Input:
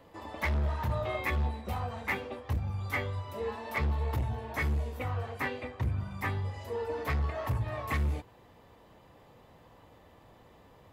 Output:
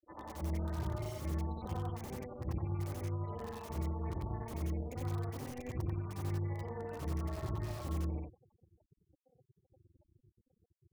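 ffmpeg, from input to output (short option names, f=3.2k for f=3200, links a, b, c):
-filter_complex "[0:a]afftfilt=real='re':imag='-im':win_size=8192:overlap=0.75,acrossover=split=89|310|1100[a][b][c][d];[a]acompressor=threshold=-41dB:ratio=4[e];[b]acompressor=threshold=-45dB:ratio=4[f];[c]acompressor=threshold=-52dB:ratio=4[g];[d]acompressor=threshold=-50dB:ratio=4[h];[e][f][g][h]amix=inputs=4:normalize=0,afftfilt=real='re*gte(hypot(re,im),0.00562)':imag='im*gte(hypot(re,im),0.00562)':win_size=1024:overlap=0.75,acrossover=split=600|1100[i][j][k];[k]aeval=exprs='(mod(447*val(0)+1,2)-1)/447':c=same[l];[i][j][l]amix=inputs=3:normalize=0,tremolo=f=250:d=0.75,volume=6.5dB"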